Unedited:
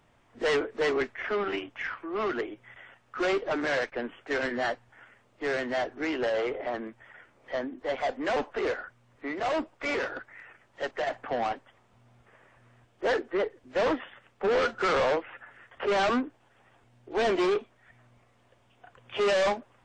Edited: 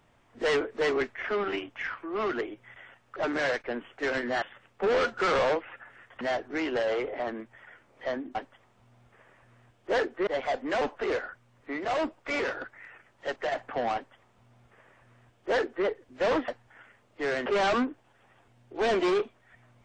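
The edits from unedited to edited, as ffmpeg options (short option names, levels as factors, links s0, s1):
-filter_complex "[0:a]asplit=8[s0][s1][s2][s3][s4][s5][s6][s7];[s0]atrim=end=3.162[s8];[s1]atrim=start=3.438:end=4.702[s9];[s2]atrim=start=14.028:end=15.822[s10];[s3]atrim=start=5.678:end=7.822[s11];[s4]atrim=start=11.488:end=13.412[s12];[s5]atrim=start=7.818:end=14.032[s13];[s6]atrim=start=4.698:end=5.682[s14];[s7]atrim=start=15.818[s15];[s8][s9]acrossfade=d=0.004:c1=hsin:c2=hsin[s16];[s16][s10]acrossfade=d=0.004:c1=hsin:c2=hsin[s17];[s17][s11]acrossfade=d=0.004:c1=hsin:c2=hsin[s18];[s18][s12]acrossfade=d=0.004:c1=hsin:c2=hsin[s19];[s19][s13]acrossfade=d=0.004:c1=hsin:c2=hsin[s20];[s20][s14]acrossfade=d=0.004:c1=hsin:c2=hsin[s21];[s21][s15]acrossfade=d=0.004:c1=hsin:c2=hsin"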